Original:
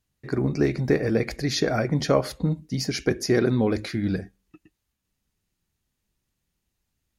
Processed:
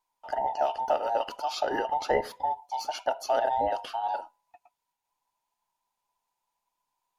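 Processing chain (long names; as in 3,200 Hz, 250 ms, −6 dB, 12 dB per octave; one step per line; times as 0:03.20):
frequency inversion band by band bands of 1,000 Hz
dynamic equaliser 7,300 Hz, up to −8 dB, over −47 dBFS, Q 0.94
level −5 dB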